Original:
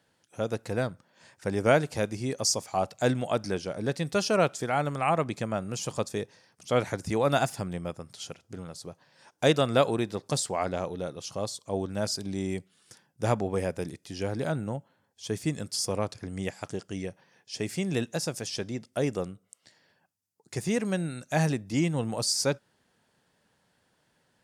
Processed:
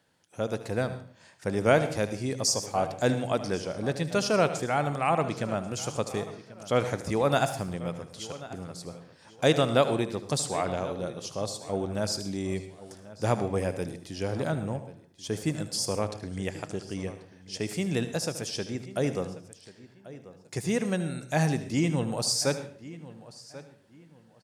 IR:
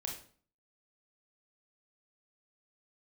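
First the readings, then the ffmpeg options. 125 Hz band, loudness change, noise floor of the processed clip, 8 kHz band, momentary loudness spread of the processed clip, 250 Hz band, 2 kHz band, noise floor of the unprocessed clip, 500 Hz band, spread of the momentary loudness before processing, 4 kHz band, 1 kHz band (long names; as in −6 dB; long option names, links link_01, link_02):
+0.5 dB, +0.5 dB, −57 dBFS, +0.5 dB, 18 LU, +0.5 dB, +0.5 dB, −71 dBFS, +0.5 dB, 13 LU, +0.5 dB, +0.5 dB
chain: -filter_complex "[0:a]asplit=2[link_01][link_02];[link_02]adelay=1088,lowpass=frequency=4100:poles=1,volume=-17dB,asplit=2[link_03][link_04];[link_04]adelay=1088,lowpass=frequency=4100:poles=1,volume=0.27,asplit=2[link_05][link_06];[link_06]adelay=1088,lowpass=frequency=4100:poles=1,volume=0.27[link_07];[link_01][link_03][link_05][link_07]amix=inputs=4:normalize=0,asplit=2[link_08][link_09];[1:a]atrim=start_sample=2205,adelay=76[link_10];[link_09][link_10]afir=irnorm=-1:irlink=0,volume=-10.5dB[link_11];[link_08][link_11]amix=inputs=2:normalize=0"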